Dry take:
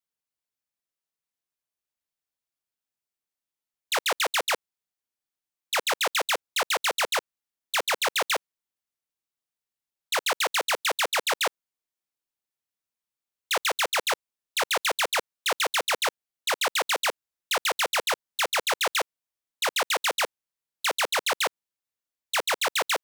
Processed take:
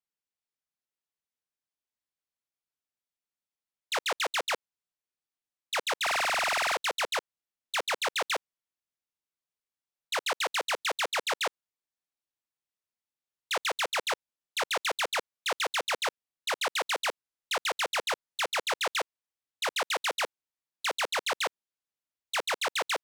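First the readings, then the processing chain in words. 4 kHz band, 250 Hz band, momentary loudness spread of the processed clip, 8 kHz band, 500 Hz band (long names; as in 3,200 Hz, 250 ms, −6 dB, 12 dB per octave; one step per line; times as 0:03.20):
−4.5 dB, −4.0 dB, 6 LU, −6.5 dB, −4.0 dB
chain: high-shelf EQ 12,000 Hz −12 dB
buffer that repeats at 0:06.02, samples 2,048, times 14
level −4 dB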